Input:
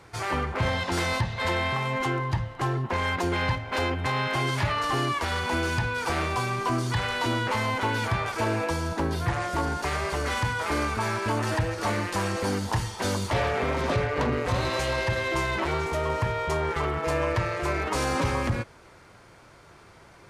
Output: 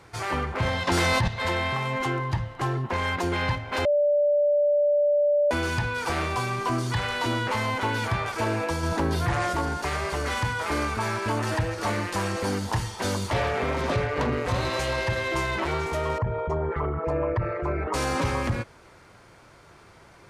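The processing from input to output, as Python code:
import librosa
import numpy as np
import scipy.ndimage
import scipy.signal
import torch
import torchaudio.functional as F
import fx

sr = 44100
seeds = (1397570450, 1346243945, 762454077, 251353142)

y = fx.env_flatten(x, sr, amount_pct=100, at=(0.87, 1.28))
y = fx.env_flatten(y, sr, amount_pct=50, at=(8.83, 9.53))
y = fx.envelope_sharpen(y, sr, power=2.0, at=(16.18, 17.94))
y = fx.edit(y, sr, fx.bleep(start_s=3.85, length_s=1.66, hz=585.0, db=-18.0), tone=tone)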